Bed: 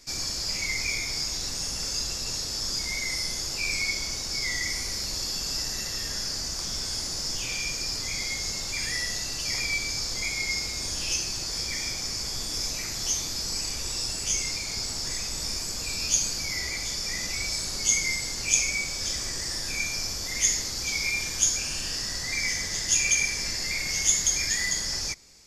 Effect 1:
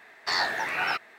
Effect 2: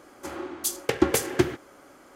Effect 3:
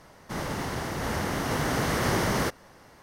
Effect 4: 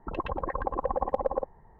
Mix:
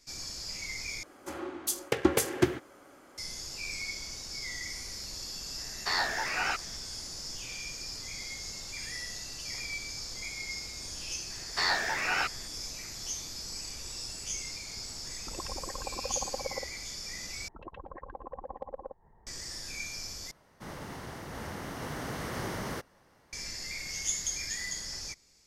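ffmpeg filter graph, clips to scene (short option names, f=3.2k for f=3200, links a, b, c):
-filter_complex "[1:a]asplit=2[a][b];[4:a]asplit=2[c][d];[0:a]volume=-9.5dB[e];[b]equalizer=f=850:w=1.5:g=-2[f];[d]acompressor=mode=upward:threshold=-37dB:ratio=2.5:attack=3.2:release=140:knee=2.83:detection=peak[g];[e]asplit=4[h][i][j][k];[h]atrim=end=1.034[l];[2:a]atrim=end=2.15,asetpts=PTS-STARTPTS,volume=-3.5dB[m];[i]atrim=start=3.176:end=17.484[n];[g]atrim=end=1.79,asetpts=PTS-STARTPTS,volume=-13.5dB[o];[j]atrim=start=19.266:end=20.314[p];[3:a]atrim=end=3.02,asetpts=PTS-STARTPTS,volume=-10.5dB[q];[k]atrim=start=23.326[r];[a]atrim=end=1.18,asetpts=PTS-STARTPTS,volume=-3.5dB,afade=t=in:d=0.004:c=hsin,afade=t=out:st=1.176:d=0.004:c=hsin,adelay=5590[s];[f]atrim=end=1.18,asetpts=PTS-STARTPTS,volume=-1.5dB,afade=t=in:d=0.004:c=hsin,afade=t=out:st=1.176:d=0.004:c=hsin,adelay=498330S[t];[c]atrim=end=1.79,asetpts=PTS-STARTPTS,volume=-9.5dB,afade=t=in:d=0.004:c=hsin,afade=t=out:st=1.786:d=0.004:c=hsin,adelay=15200[u];[l][m]acrossfade=d=0.004:c1=hsin:c2=hsin[v];[v][n]acrossfade=d=0.004:c1=hsin:c2=hsin[w];[w][o]acrossfade=d=0.004:c1=hsin:c2=hsin[x];[x][p]acrossfade=d=0.004:c1=hsin:c2=hsin[y];[y][q]acrossfade=d=0.004:c1=hsin:c2=hsin[z];[z][r]acrossfade=d=0.004:c1=hsin:c2=hsin[aa];[aa][s][t][u]amix=inputs=4:normalize=0"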